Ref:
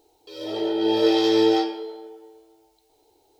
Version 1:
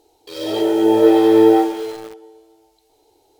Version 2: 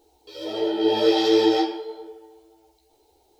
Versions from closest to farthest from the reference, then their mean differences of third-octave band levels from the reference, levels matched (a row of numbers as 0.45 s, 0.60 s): 2, 1; 1.5 dB, 3.5 dB